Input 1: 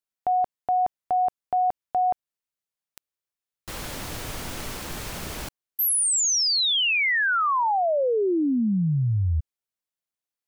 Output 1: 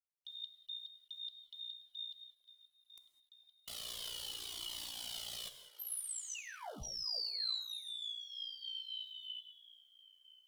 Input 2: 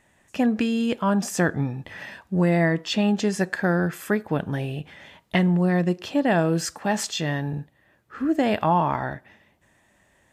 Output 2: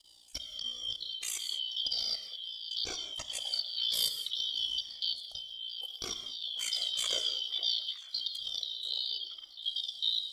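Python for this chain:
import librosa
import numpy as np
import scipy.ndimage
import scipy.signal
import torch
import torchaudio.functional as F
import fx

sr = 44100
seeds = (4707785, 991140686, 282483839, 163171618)

y = fx.band_shuffle(x, sr, order='3412')
y = fx.level_steps(y, sr, step_db=21)
y = fx.graphic_eq_15(y, sr, hz=(160, 1600, 10000), db=(-5, -6, 5))
y = fx.echo_stepped(y, sr, ms=457, hz=630.0, octaves=1.4, feedback_pct=70, wet_db=-9)
y = fx.over_compress(y, sr, threshold_db=-34.0, ratio=-1.0)
y = y * np.sin(2.0 * np.pi * 29.0 * np.arange(len(y)) / sr)
y = fx.rev_gated(y, sr, seeds[0], gate_ms=230, shape='flat', drr_db=8.5)
y = fx.dynamic_eq(y, sr, hz=4400.0, q=2.6, threshold_db=-49.0, ratio=8.0, max_db=7)
y = fx.quant_companded(y, sr, bits=8)
y = fx.comb_cascade(y, sr, direction='falling', hz=0.64)
y = y * 10.0 ** (2.5 / 20.0)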